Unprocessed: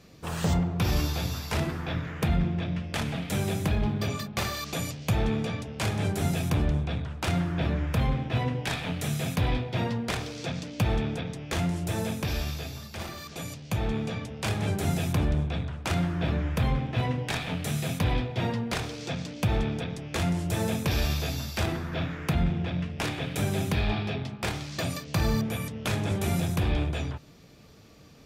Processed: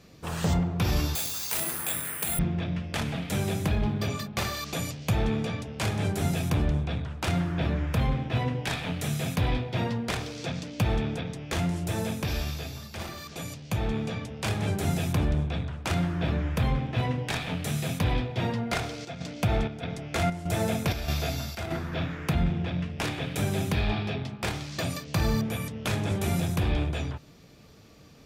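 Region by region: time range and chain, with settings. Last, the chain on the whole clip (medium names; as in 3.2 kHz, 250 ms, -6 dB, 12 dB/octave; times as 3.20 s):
1.15–2.39 s: RIAA curve recording + compression 2:1, threshold -32 dBFS + careless resampling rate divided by 4×, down filtered, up zero stuff
18.58–21.79 s: square tremolo 1.6 Hz, depth 60%, duty 75% + small resonant body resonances 690/1400/2100 Hz, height 9 dB
whole clip: none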